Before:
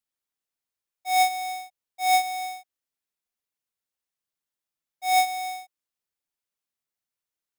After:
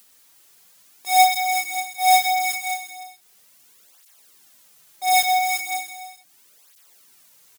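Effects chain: treble shelf 4.4 kHz +6.5 dB; in parallel at +1 dB: upward compressor, threshold -27 dBFS; on the sum: bass shelf 78 Hz -9 dB; multi-tap echo 120/182/363/571 ms -10/-15.5/-7/-11 dB; cancelling through-zero flanger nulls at 0.37 Hz, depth 6.2 ms; trim -1 dB

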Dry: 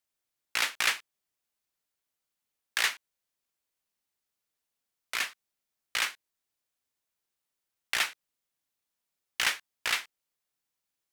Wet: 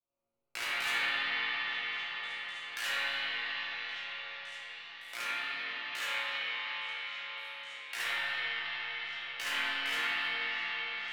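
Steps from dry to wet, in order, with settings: local Wiener filter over 25 samples; treble shelf 12 kHz +2.5 dB; chord resonator A#2 minor, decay 0.79 s; 5.26–7.98 s: high-pass 430 Hz 6 dB/octave; repeats whose band climbs or falls 561 ms, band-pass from 2.5 kHz, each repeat 0.7 oct, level -11.5 dB; reverberation RT60 5.5 s, pre-delay 47 ms, DRR -12.5 dB; three bands compressed up and down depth 40%; trim +8 dB

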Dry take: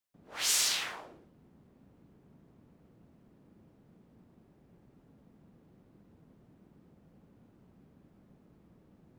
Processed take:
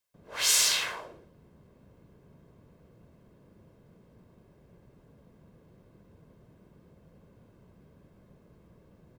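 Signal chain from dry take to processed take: comb 1.9 ms, depth 45%; trim +4 dB

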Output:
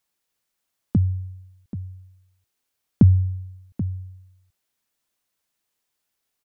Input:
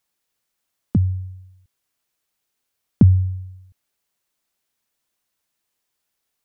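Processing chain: delay 783 ms -13 dB; trim -1.5 dB

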